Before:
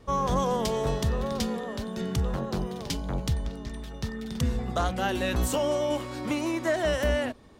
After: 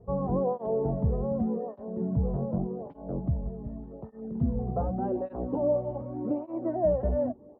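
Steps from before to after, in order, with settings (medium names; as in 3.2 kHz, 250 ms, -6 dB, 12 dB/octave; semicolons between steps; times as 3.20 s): Chebyshev low-pass 700 Hz, order 3; echo from a far wall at 270 m, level -27 dB; cancelling through-zero flanger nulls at 0.85 Hz, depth 3.7 ms; trim +3.5 dB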